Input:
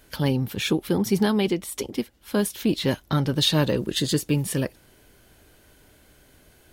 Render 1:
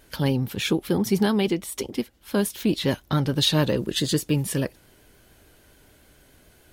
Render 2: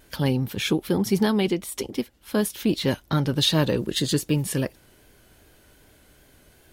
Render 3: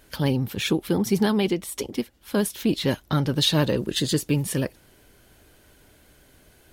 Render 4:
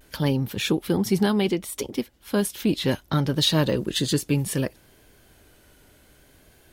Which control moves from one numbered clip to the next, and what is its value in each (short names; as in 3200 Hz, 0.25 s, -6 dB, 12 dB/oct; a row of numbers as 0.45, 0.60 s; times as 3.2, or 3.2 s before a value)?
vibrato, rate: 7, 2.6, 15, 0.65 Hz